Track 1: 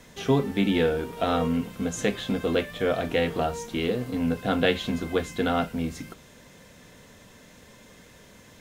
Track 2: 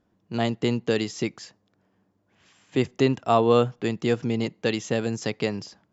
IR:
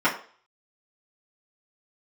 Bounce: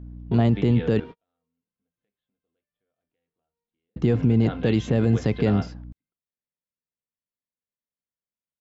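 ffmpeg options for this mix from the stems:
-filter_complex "[0:a]lowpass=frequency=4000:width=0.5412,lowpass=frequency=4000:width=1.3066,acompressor=threshold=-29dB:ratio=2.5,volume=-3dB[link_01];[1:a]aemphasis=mode=reproduction:type=riaa,aeval=exprs='val(0)+0.01*(sin(2*PI*60*n/s)+sin(2*PI*2*60*n/s)/2+sin(2*PI*3*60*n/s)/3+sin(2*PI*4*60*n/s)/4+sin(2*PI*5*60*n/s)/5)':channel_layout=same,volume=2.5dB,asplit=3[link_02][link_03][link_04];[link_02]atrim=end=1,asetpts=PTS-STARTPTS,afade=type=out:start_time=0.996:duration=0.004:curve=hsin[link_05];[link_03]atrim=start=1:end=3.96,asetpts=PTS-STARTPTS,volume=0[link_06];[link_04]atrim=start=3.96,asetpts=PTS-STARTPTS,afade=type=in:duration=0.004:curve=hsin[link_07];[link_05][link_06][link_07]concat=n=3:v=0:a=1,asplit=2[link_08][link_09];[link_09]apad=whole_len=383835[link_10];[link_01][link_10]sidechaingate=range=-50dB:threshold=-32dB:ratio=16:detection=peak[link_11];[link_11][link_08]amix=inputs=2:normalize=0,alimiter=limit=-10.5dB:level=0:latency=1:release=24"

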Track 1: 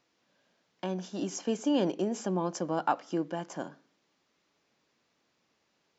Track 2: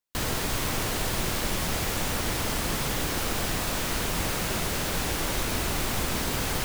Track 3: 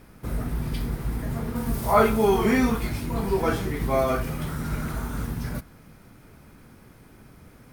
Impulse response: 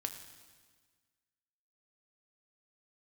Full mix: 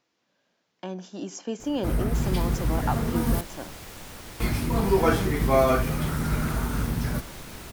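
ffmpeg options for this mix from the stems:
-filter_complex "[0:a]volume=-1dB[link_01];[1:a]adelay=2000,volume=-13.5dB[link_02];[2:a]adelay=1600,volume=3dB,asplit=3[link_03][link_04][link_05];[link_03]atrim=end=3.41,asetpts=PTS-STARTPTS,afade=type=out:start_time=3.406:duration=0.004:curve=hsin[link_06];[link_04]atrim=start=3.41:end=4.4,asetpts=PTS-STARTPTS,volume=0[link_07];[link_05]atrim=start=4.4,asetpts=PTS-STARTPTS,afade=type=in:duration=0.004:curve=hsin[link_08];[link_06][link_07][link_08]concat=n=3:v=0:a=1[link_09];[link_01][link_02][link_09]amix=inputs=3:normalize=0"

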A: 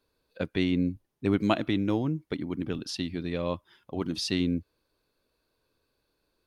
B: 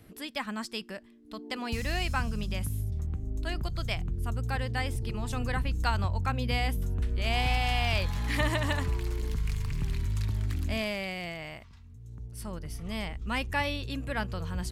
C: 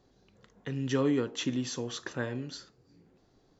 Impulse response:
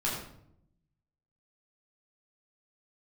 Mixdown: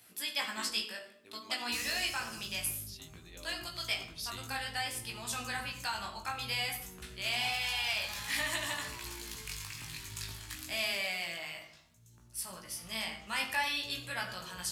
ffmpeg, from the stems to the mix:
-filter_complex "[0:a]volume=-13.5dB[link_01];[1:a]alimiter=limit=-21dB:level=0:latency=1:release=180,volume=-2.5dB,asplit=2[link_02][link_03];[link_03]volume=-7dB[link_04];[2:a]lowshelf=frequency=490:gain=9.5,aeval=exprs='val(0)*sin(2*PI*84*n/s)':channel_layout=same,volume=-10dB,asplit=3[link_05][link_06][link_07];[link_05]atrim=end=0.83,asetpts=PTS-STARTPTS,afade=type=out:start_time=0.826:duration=0.004:curve=hsin[link_08];[link_06]atrim=start=0.83:end=2.2,asetpts=PTS-STARTPTS,volume=0[link_09];[link_07]atrim=start=2.2,asetpts=PTS-STARTPTS,afade=type=in:duration=0.004:curve=hsin[link_10];[link_08][link_09][link_10]concat=n=3:v=0:a=1,asplit=2[link_11][link_12];[link_12]apad=whole_len=284933[link_13];[link_01][link_13]sidechaincompress=threshold=-53dB:ratio=8:attack=5.3:release=535[link_14];[3:a]atrim=start_sample=2205[link_15];[link_04][link_15]afir=irnorm=-1:irlink=0[link_16];[link_14][link_02][link_11][link_16]amix=inputs=4:normalize=0,highpass=frequency=970:poles=1,highshelf=frequency=3100:gain=11.5,flanger=delay=16.5:depth=2.5:speed=0.56"

